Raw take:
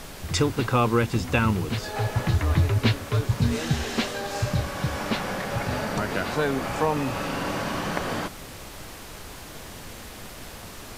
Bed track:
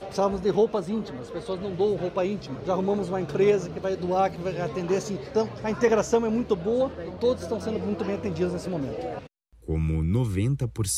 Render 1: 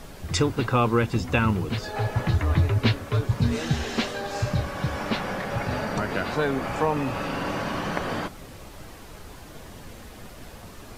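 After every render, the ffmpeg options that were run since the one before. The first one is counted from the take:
ffmpeg -i in.wav -af "afftdn=noise_reduction=7:noise_floor=-41" out.wav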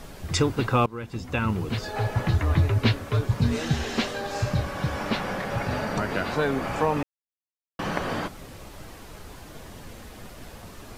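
ffmpeg -i in.wav -filter_complex "[0:a]asplit=4[link_01][link_02][link_03][link_04];[link_01]atrim=end=0.86,asetpts=PTS-STARTPTS,afade=type=out:start_time=0.856:duration=0.004:curve=hsin:silence=0.0891251[link_05];[link_02]atrim=start=0.86:end=7.03,asetpts=PTS-STARTPTS,afade=type=in:duration=0.91:silence=0.0891251,afade=type=out:start_time=6.166:duration=0.004:curve=hsin[link_06];[link_03]atrim=start=7.03:end=7.79,asetpts=PTS-STARTPTS,volume=0[link_07];[link_04]atrim=start=7.79,asetpts=PTS-STARTPTS,afade=type=in:duration=0.004:curve=hsin[link_08];[link_05][link_06][link_07][link_08]concat=n=4:v=0:a=1" out.wav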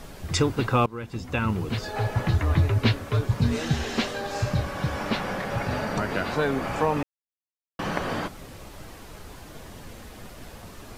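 ffmpeg -i in.wav -af anull out.wav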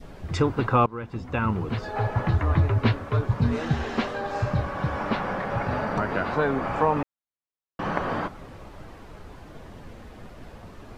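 ffmpeg -i in.wav -af "lowpass=frequency=1700:poles=1,adynamicequalizer=threshold=0.01:dfrequency=1100:dqfactor=0.99:tfrequency=1100:tqfactor=0.99:attack=5:release=100:ratio=0.375:range=2.5:mode=boostabove:tftype=bell" out.wav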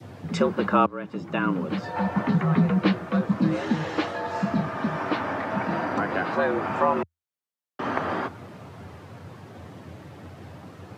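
ffmpeg -i in.wav -af "afreqshift=83" out.wav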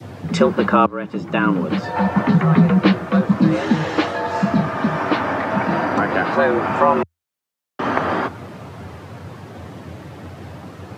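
ffmpeg -i in.wav -af "volume=7.5dB,alimiter=limit=-2dB:level=0:latency=1" out.wav

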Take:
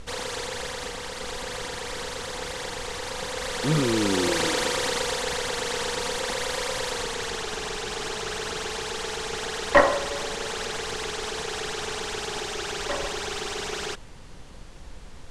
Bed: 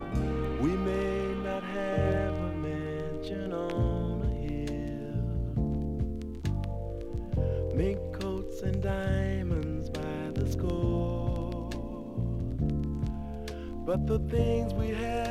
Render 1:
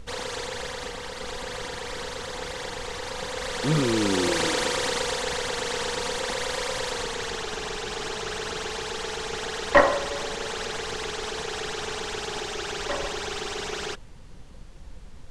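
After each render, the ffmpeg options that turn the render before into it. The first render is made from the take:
ffmpeg -i in.wav -af "afftdn=noise_reduction=6:noise_floor=-42" out.wav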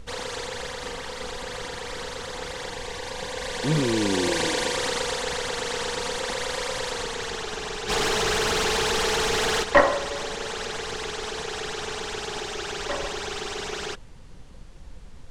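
ffmpeg -i in.wav -filter_complex "[0:a]asettb=1/sr,asplit=3[link_01][link_02][link_03];[link_01]atrim=end=0.804[link_04];[link_02]atrim=start=0.8:end=1.28,asetpts=PTS-STARTPTS,afade=type=in:duration=0.004:curve=qsin,afade=type=out:start_time=0.476:duration=0.004:curve=qsin,asplit=2[link_05][link_06];[link_06]adelay=42,volume=-5dB[link_07];[link_05][link_07]amix=inputs=2:normalize=0,atrim=end_sample=21168[link_08];[link_03]atrim=start=1.276[link_09];[link_04][link_08]acrossfade=duration=0.004:curve1=hsin:curve2=qsin[link_10];[link_10][link_09]acrossfade=duration=0.004:curve1=qsin:curve2=hsin,asettb=1/sr,asplit=3[link_11][link_12][link_13];[link_11]atrim=end=2.714[link_14];[link_12]atrim=start=2.71:end=4.77,asetpts=PTS-STARTPTS,afade=type=in:duration=0.004:curve=qsin,afade=type=out:start_time=2.056:duration=0.004:curve=qsin,asuperstop=centerf=1300:order=4:qfactor=6.5[link_15];[link_13]atrim=start=4.766[link_16];[link_14][link_15]acrossfade=duration=0.004:curve1=hsin:curve2=qsin[link_17];[link_17][link_16]acrossfade=duration=0.004:curve1=qsin:curve2=hsin,asplit=3[link_18][link_19][link_20];[link_18]afade=type=out:start_time=7.88:duration=0.02[link_21];[link_19]aeval=exprs='0.106*sin(PI/2*2.24*val(0)/0.106)':channel_layout=same,afade=type=in:start_time=7.88:duration=0.02,afade=type=out:start_time=9.62:duration=0.02[link_22];[link_20]afade=type=in:start_time=9.62:duration=0.02[link_23];[link_21][link_22][link_23]amix=inputs=3:normalize=0" out.wav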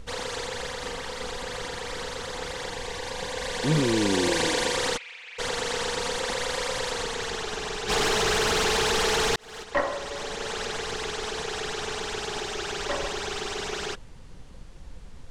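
ffmpeg -i in.wav -filter_complex "[0:a]asplit=3[link_01][link_02][link_03];[link_01]afade=type=out:start_time=4.96:duration=0.02[link_04];[link_02]bandpass=frequency=2400:width_type=q:width=7.4,afade=type=in:start_time=4.96:duration=0.02,afade=type=out:start_time=5.38:duration=0.02[link_05];[link_03]afade=type=in:start_time=5.38:duration=0.02[link_06];[link_04][link_05][link_06]amix=inputs=3:normalize=0,asplit=2[link_07][link_08];[link_07]atrim=end=9.36,asetpts=PTS-STARTPTS,afade=type=out:start_time=9.356:duration=0.004:curve=hsin[link_09];[link_08]atrim=start=9.36,asetpts=PTS-STARTPTS,afade=type=in:duration=1.19[link_10];[link_09][link_10]concat=n=2:v=0:a=1" out.wav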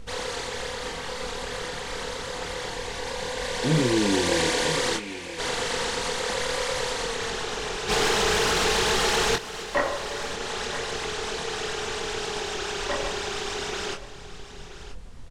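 ffmpeg -i in.wav -filter_complex "[0:a]asplit=2[link_01][link_02];[link_02]adelay=24,volume=-5dB[link_03];[link_01][link_03]amix=inputs=2:normalize=0,aecho=1:1:977:0.2" out.wav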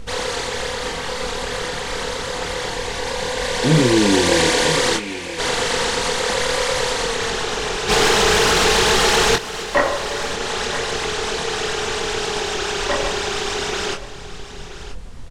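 ffmpeg -i in.wav -af "volume=7.5dB" out.wav

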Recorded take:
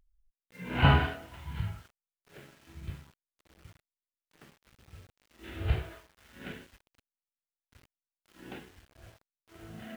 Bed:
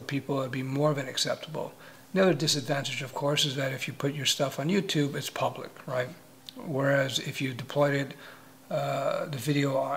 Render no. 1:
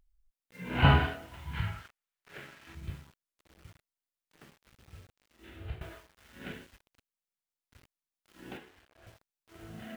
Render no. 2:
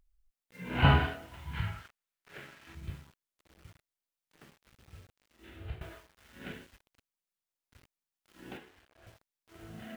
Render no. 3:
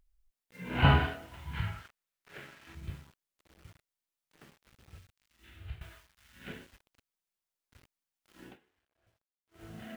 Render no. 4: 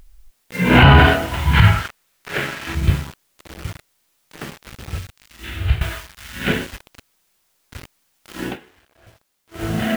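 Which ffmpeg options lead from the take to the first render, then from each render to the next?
ffmpeg -i in.wav -filter_complex "[0:a]asettb=1/sr,asplit=3[link_01][link_02][link_03];[link_01]atrim=end=1.534[link_04];[link_02]atrim=start=1.53:end=2.75,asetpts=PTS-STARTPTS,afade=type=in:duration=0.004:curve=qsin,afade=type=out:start_time=1.216:duration=0.004:curve=qsin,equalizer=frequency=1800:width=0.6:gain=9[link_05];[link_03]atrim=start=2.746[link_06];[link_04][link_05]acrossfade=duration=0.004:curve1=hsin:curve2=qsin[link_07];[link_07][link_06]acrossfade=duration=0.004:curve1=qsin:curve2=hsin,asettb=1/sr,asplit=3[link_08][link_09][link_10];[link_08]atrim=end=8.574[link_11];[link_09]atrim=start=8.57:end=9.07,asetpts=PTS-STARTPTS,afade=type=in:duration=0.004:curve=qsin,afade=type=out:start_time=0.496:duration=0.004:curve=qsin,bass=frequency=250:gain=-11,treble=frequency=4000:gain=-7[link_12];[link_10]atrim=start=9.066[link_13];[link_11][link_12]acrossfade=duration=0.004:curve1=hsin:curve2=qsin[link_14];[link_14][link_13]acrossfade=duration=0.004:curve1=qsin:curve2=hsin,asplit=2[link_15][link_16];[link_15]atrim=end=5.81,asetpts=PTS-STARTPTS,afade=type=out:start_time=4.95:duration=0.86:silence=0.158489[link_17];[link_16]atrim=start=5.81,asetpts=PTS-STARTPTS,afade=type=in:duration=0.004:curve=hsin:silence=0.158489[link_18];[link_17][link_18]concat=n=2:v=0:a=1" out.wav
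ffmpeg -i in.wav -af "volume=-1dB" out.wav
ffmpeg -i in.wav -filter_complex "[0:a]asettb=1/sr,asplit=3[link_01][link_02][link_03];[link_01]atrim=end=4.984[link_04];[link_02]atrim=start=4.98:end=6.48,asetpts=PTS-STARTPTS,afade=type=in:duration=0.004:curve=qsin,afade=type=out:start_time=1.496:duration=0.004:curve=qsin,equalizer=frequency=430:width_type=o:width=2.3:gain=-13[link_05];[link_03]atrim=start=6.476[link_06];[link_04][link_05]acrossfade=duration=0.004:curve1=hsin:curve2=qsin[link_07];[link_07][link_06]acrossfade=duration=0.004:curve1=qsin:curve2=hsin,asplit=3[link_08][link_09][link_10];[link_08]atrim=end=8.56,asetpts=PTS-STARTPTS,afade=type=out:start_time=8.43:duration=0.13:silence=0.125893[link_11];[link_09]atrim=start=8.56:end=9.51,asetpts=PTS-STARTPTS,volume=-18dB[link_12];[link_10]atrim=start=9.51,asetpts=PTS-STARTPTS,afade=type=in:duration=0.13:silence=0.125893[link_13];[link_11][link_12][link_13]concat=n=3:v=0:a=1" out.wav
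ffmpeg -i in.wav -af "acontrast=83,alimiter=level_in=18dB:limit=-1dB:release=50:level=0:latency=1" out.wav

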